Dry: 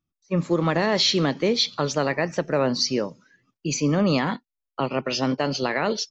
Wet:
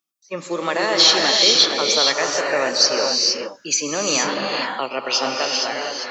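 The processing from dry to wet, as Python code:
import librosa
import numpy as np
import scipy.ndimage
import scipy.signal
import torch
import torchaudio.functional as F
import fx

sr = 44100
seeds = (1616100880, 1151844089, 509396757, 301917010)

y = fx.fade_out_tail(x, sr, length_s=0.86)
y = scipy.signal.sosfilt(scipy.signal.butter(2, 450.0, 'highpass', fs=sr, output='sos'), y)
y = fx.high_shelf(y, sr, hz=3400.0, db=10.0)
y = fx.dmg_crackle(y, sr, seeds[0], per_s=fx.line((1.07, 18.0), (1.48, 49.0)), level_db=-46.0, at=(1.07, 1.48), fade=0.02)
y = fx.rev_gated(y, sr, seeds[1], gate_ms=490, shape='rising', drr_db=-0.5)
y = y * 10.0 ** (1.5 / 20.0)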